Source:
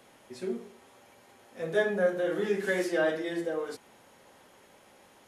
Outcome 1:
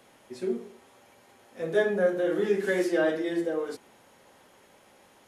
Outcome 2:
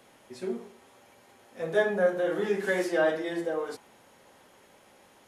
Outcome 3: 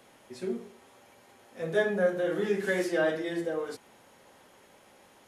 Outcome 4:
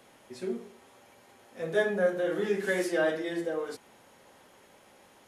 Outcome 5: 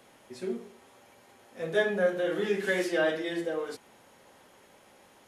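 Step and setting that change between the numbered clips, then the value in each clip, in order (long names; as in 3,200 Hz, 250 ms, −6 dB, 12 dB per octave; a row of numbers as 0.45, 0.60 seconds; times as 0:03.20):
dynamic equaliser, frequency: 330, 870, 120, 9,900, 3,000 Hertz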